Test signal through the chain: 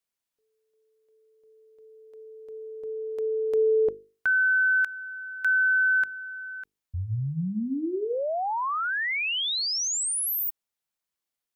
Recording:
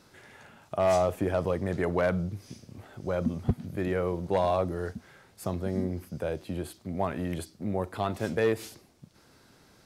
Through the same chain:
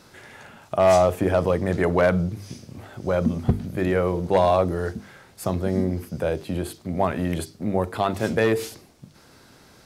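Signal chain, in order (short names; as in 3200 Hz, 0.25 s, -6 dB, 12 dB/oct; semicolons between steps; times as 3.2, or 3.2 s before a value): notches 50/100/150/200/250/300/350/400/450 Hz; gain +7.5 dB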